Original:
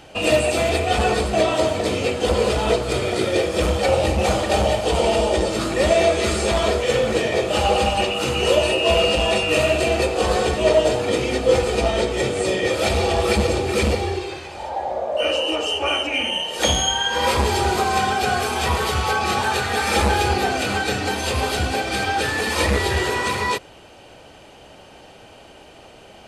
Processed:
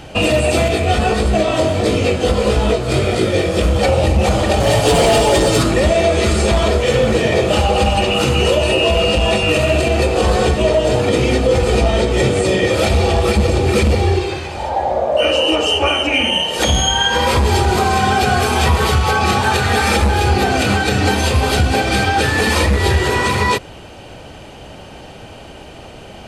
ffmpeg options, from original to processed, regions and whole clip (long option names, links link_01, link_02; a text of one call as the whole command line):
ffmpeg -i in.wav -filter_complex "[0:a]asettb=1/sr,asplit=3[link_01][link_02][link_03];[link_01]atrim=end=0.684[link_04];[link_02]atrim=start=0.68:end=3.76,asetpts=PTS-STARTPTS,afade=type=in:duration=0.004:curve=qsin,afade=type=out:start_time=3.076:duration=0.004:curve=qsin,bandreject=frequency=910:width=16,flanger=delay=18:depth=4.3:speed=1.6[link_05];[link_03]atrim=start=3.756[link_06];[link_04][link_05]acrossfade=duration=0.004:curve1=hsin:curve2=qsin[link_07];[link_07][link_06]acrossfade=duration=0.004:curve1=qsin:curve2=hsin,asettb=1/sr,asplit=3[link_08][link_09][link_10];[link_08]atrim=end=4.604[link_11];[link_09]atrim=start=4.6:end=5.63,asetpts=PTS-STARTPTS,afade=type=in:duration=0.004:curve=qsin,afade=type=out:start_time=1.026:duration=0.004:curve=qsin,highshelf=frequency=6900:gain=8,aecho=1:1:7.1:0.77,atrim=end_sample=45423,asoftclip=type=hard:threshold=-15dB[link_12];[link_10]atrim=start=5.626[link_13];[link_11][link_12]acrossfade=duration=0.004:curve1=hsin:curve2=qsin[link_14];[link_14][link_13]acrossfade=duration=0.004:curve1=qsin:curve2=hsin,bass=frequency=250:gain=7,treble=frequency=4000:gain=-1,alimiter=limit=-12.5dB:level=0:latency=1:release=153,volume=7.5dB" out.wav